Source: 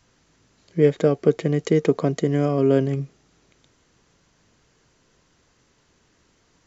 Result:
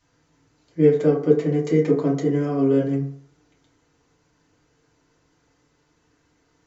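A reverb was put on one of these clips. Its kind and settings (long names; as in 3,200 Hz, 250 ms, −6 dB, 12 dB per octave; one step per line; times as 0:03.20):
feedback delay network reverb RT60 0.54 s, low-frequency decay 0.8×, high-frequency decay 0.4×, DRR −6 dB
level −9.5 dB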